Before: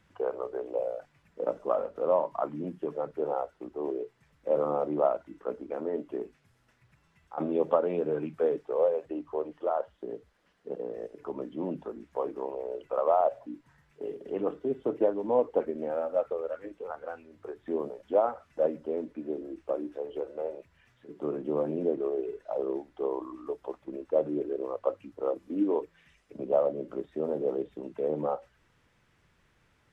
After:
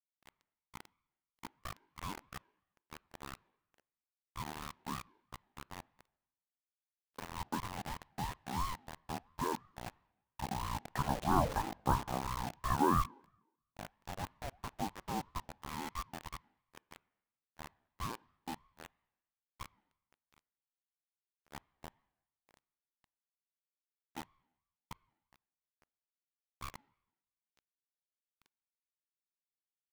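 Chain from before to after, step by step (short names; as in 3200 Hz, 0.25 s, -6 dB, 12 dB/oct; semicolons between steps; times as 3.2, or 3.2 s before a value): Doppler pass-by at 11.41, 9 m/s, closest 2.4 m; notches 50/100/150/200/250 Hz; comb 1.5 ms, depth 47%; in parallel at -1 dB: compressor 5:1, threshold -56 dBFS, peak gain reduction 22.5 dB; on the sum: bit-crush 8-bit; gate -56 dBFS, range -19 dB; on a send at -23.5 dB: reverb RT60 0.95 s, pre-delay 19 ms; on the sum: ring modulator with a swept carrier 420 Hz, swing 35%, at 3 Hz; gain +9 dB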